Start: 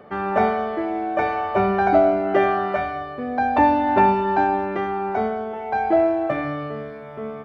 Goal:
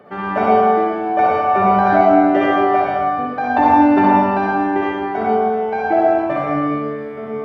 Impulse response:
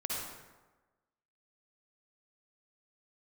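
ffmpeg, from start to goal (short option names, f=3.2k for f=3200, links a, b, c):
-filter_complex "[0:a]highpass=100[a];[1:a]atrim=start_sample=2205,asetrate=43218,aresample=44100[b];[a][b]afir=irnorm=-1:irlink=0,volume=2dB"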